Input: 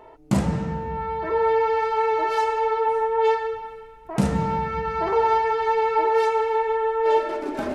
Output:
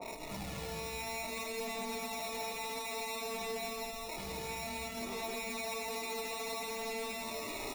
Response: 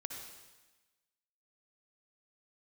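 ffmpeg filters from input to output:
-af "lowshelf=frequency=440:gain=-7,acompressor=mode=upward:threshold=-29dB:ratio=2.5,alimiter=level_in=5.5dB:limit=-24dB:level=0:latency=1:release=21,volume=-5.5dB,acrusher=samples=28:mix=1:aa=0.000001,aphaser=in_gain=1:out_gain=1:delay=2.5:decay=0.42:speed=0.58:type=sinusoidal,asoftclip=type=hard:threshold=-31.5dB,aecho=1:1:75.8|215.7:0.501|0.708,adynamicequalizer=threshold=0.00316:dfrequency=1700:dqfactor=0.7:tfrequency=1700:tqfactor=0.7:attack=5:release=100:ratio=0.375:range=3.5:mode=boostabove:tftype=highshelf,volume=-8dB"

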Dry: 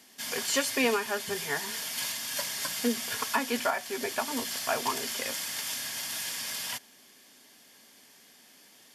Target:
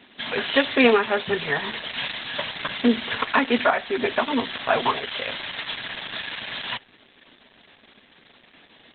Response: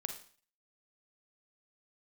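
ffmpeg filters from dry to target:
-filter_complex "[0:a]asettb=1/sr,asplit=3[link_01][link_02][link_03];[link_01]atrim=end=4.924[link_04];[link_02]atrim=start=4.92:end=5.33,asetpts=PTS-STARTPTS,afade=type=in:duration=0.004:curve=qsin,afade=type=out:start_time=0.406:duration=0.004:curve=qsin,equalizer=frequency=280:width_type=o:width=1.1:gain=-9.5[link_05];[link_03]atrim=start=5.326[link_06];[link_04][link_05]acrossfade=duration=0.004:curve1=hsin:curve2=qsin[link_07];[link_07][link_06]acrossfade=duration=0.004:curve1=qsin:curve2=hsin,asplit=2[link_08][link_09];[1:a]atrim=start_sample=2205,atrim=end_sample=3969,asetrate=66150,aresample=44100[link_10];[link_09][link_10]afir=irnorm=-1:irlink=0,volume=-7.5dB[link_11];[link_08][link_11]amix=inputs=2:normalize=0,volume=9dB" -ar 48000 -c:a libopus -b:a 8k

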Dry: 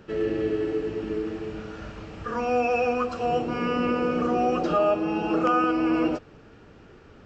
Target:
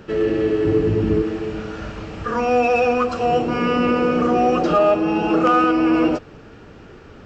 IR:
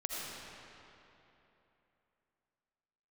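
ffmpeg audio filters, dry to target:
-filter_complex "[0:a]asettb=1/sr,asplit=3[link_01][link_02][link_03];[link_01]atrim=end=0.654[link_04];[link_02]atrim=start=0.65:end=1.22,asetpts=PTS-STARTPTS,afade=type=in:duration=0.004:curve=qsin,afade=type=out:start_time=0.566:duration=0.004:curve=qsin,equalizer=frequency=100:width_type=o:width=2.1:gain=15[link_05];[link_03]atrim=start=1.216[link_06];[link_04][link_05]acrossfade=duration=0.004:curve1=hsin:curve2=qsin[link_07];[link_07][link_06]acrossfade=duration=0.004:curve1=qsin:curve2=hsin,asplit=2[link_08][link_09];[link_09]asoftclip=type=tanh:threshold=-26dB,volume=-8dB[link_10];[link_08][link_10]amix=inputs=2:normalize=0,volume=5dB"

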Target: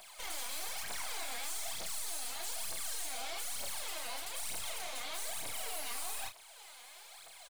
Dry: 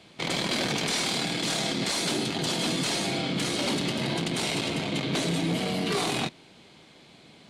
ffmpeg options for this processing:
ffmpeg -i in.wav -filter_complex "[0:a]highpass=frequency=690:width=0.5412,highpass=frequency=690:width=1.3066,aemphasis=mode=production:type=riaa,asettb=1/sr,asplit=3[link_01][link_02][link_03];[link_01]atrim=end=0.834[link_04];[link_02]atrim=start=0.83:end=1.46,asetpts=PTS-STARTPTS,afade=type=in:duration=0.004:curve=qsin,afade=type=out:start_time=0.626:duration=0.004:curve=qsin,acrossover=split=3100[link_05][link_06];[link_06]acompressor=threshold=-30dB:ratio=4:attack=1:release=60[link_07];[link_05][link_07]amix=inputs=2:normalize=0[link_08];[link_03]atrim=start=1.456[link_09];[link_04][link_08]acrossfade=duration=0.004:curve1=hsin:curve2=qsin[link_10];[link_10][link_09]acrossfade=duration=0.004:curve1=qsin:curve2=hsin,equalizer=frequency=3800:width_type=o:width=2.5:gain=-12.5,alimiter=level_in=2.5dB:limit=-24dB:level=0:latency=1:release=424,volume=-2.5dB,aeval=exprs='(tanh(224*val(0)+0.4)-tanh(0.4))/224':channel_layout=same,aphaser=in_gain=1:out_gain=1:delay=4.3:decay=0.72:speed=1.1:type=triangular,asplit=2[link_11][link_12];[link_12]adelay=32,volume=-7dB[link_13];[link_11][link_13]amix=inputs=2:normalize=0,volume=3.5dB" out.wav

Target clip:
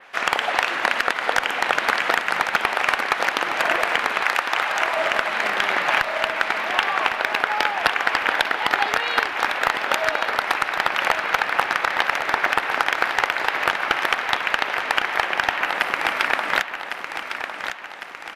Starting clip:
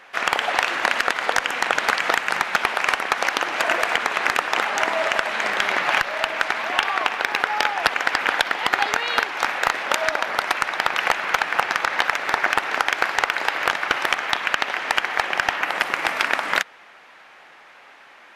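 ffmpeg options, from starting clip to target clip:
ffmpeg -i in.wav -filter_complex "[0:a]asettb=1/sr,asplit=3[link_01][link_02][link_03];[link_01]atrim=end=4.214[link_04];[link_02]atrim=start=4.21:end=4.97,asetpts=PTS-STARTPTS,afade=type=in:duration=0.004:curve=qsin,afade=type=out:start_time=0.756:duration=0.004:curve=qsin,highpass=610[link_05];[link_03]atrim=start=4.966[link_06];[link_04][link_05]acrossfade=duration=0.004:curve1=hsin:curve2=qsin[link_07];[link_07][link_06]acrossfade=duration=0.004:curve1=qsin:curve2=hsin,asplit=2[link_08][link_09];[link_09]aecho=0:1:1105|2210|3315|4420|5525|6630:0.376|0.188|0.094|0.047|0.0235|0.0117[link_10];[link_08][link_10]amix=inputs=2:normalize=0,adynamicequalizer=threshold=0.00708:dfrequency=6800:dqfactor=1.2:tfrequency=6800:tqfactor=1.2:attack=5:release=100:ratio=0.375:range=2.5:mode=cutabove:tftype=bell" out.wav

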